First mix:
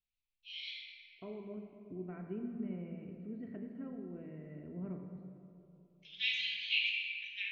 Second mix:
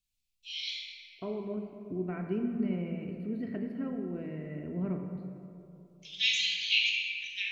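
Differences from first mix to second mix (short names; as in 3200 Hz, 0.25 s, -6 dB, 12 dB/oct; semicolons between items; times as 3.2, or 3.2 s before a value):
second voice +8.5 dB; master: remove air absorption 340 m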